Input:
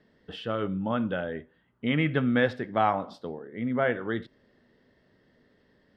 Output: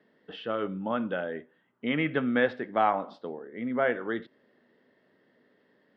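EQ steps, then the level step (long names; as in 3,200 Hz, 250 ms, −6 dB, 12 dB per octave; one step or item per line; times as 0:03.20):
band-pass filter 230–3,400 Hz
0.0 dB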